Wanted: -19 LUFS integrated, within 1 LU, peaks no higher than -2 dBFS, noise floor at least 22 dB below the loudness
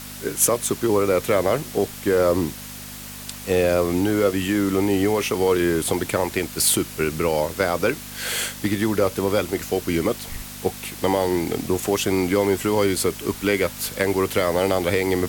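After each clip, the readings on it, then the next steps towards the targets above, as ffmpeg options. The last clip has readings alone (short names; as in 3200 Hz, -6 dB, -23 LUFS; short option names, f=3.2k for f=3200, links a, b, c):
hum 50 Hz; harmonics up to 250 Hz; hum level -40 dBFS; noise floor -37 dBFS; noise floor target -44 dBFS; loudness -22.0 LUFS; peak -4.0 dBFS; loudness target -19.0 LUFS
-> -af "bandreject=f=50:t=h:w=4,bandreject=f=100:t=h:w=4,bandreject=f=150:t=h:w=4,bandreject=f=200:t=h:w=4,bandreject=f=250:t=h:w=4"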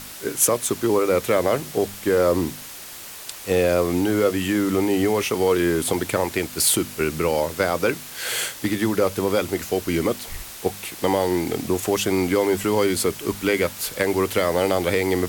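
hum none; noise floor -38 dBFS; noise floor target -44 dBFS
-> -af "afftdn=nr=6:nf=-38"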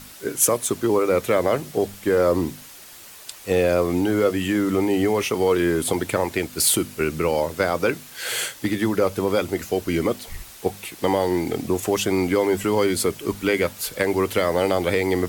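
noise floor -43 dBFS; noise floor target -44 dBFS
-> -af "afftdn=nr=6:nf=-43"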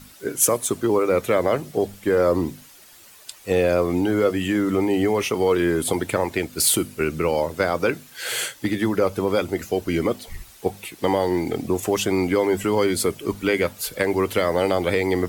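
noise floor -48 dBFS; loudness -22.0 LUFS; peak -4.0 dBFS; loudness target -19.0 LUFS
-> -af "volume=3dB,alimiter=limit=-2dB:level=0:latency=1"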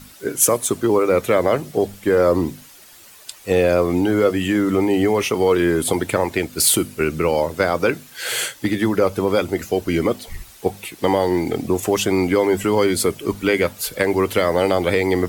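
loudness -19.0 LUFS; peak -2.0 dBFS; noise floor -45 dBFS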